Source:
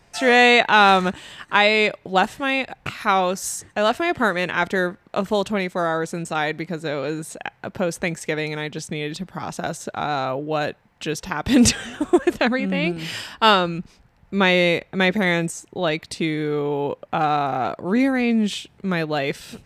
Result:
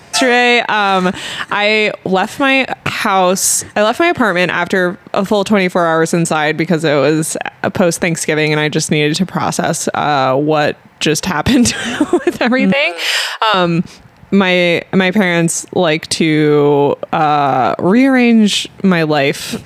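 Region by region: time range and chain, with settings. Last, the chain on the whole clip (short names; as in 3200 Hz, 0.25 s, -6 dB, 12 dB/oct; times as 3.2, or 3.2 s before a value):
12.72–13.54 compressor, threshold -19 dBFS + Chebyshev high-pass 490 Hz, order 4
whole clip: HPF 93 Hz; compressor 4:1, threshold -24 dBFS; maximiser +18 dB; gain -1 dB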